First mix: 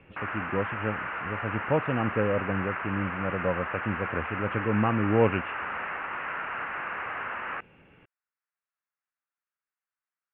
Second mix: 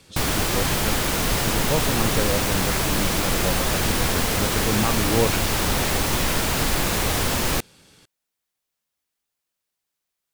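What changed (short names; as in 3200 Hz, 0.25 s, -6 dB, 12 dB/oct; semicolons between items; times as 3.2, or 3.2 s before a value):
background: remove band-pass 1400 Hz, Q 2.5; master: remove Chebyshev low-pass 2800 Hz, order 6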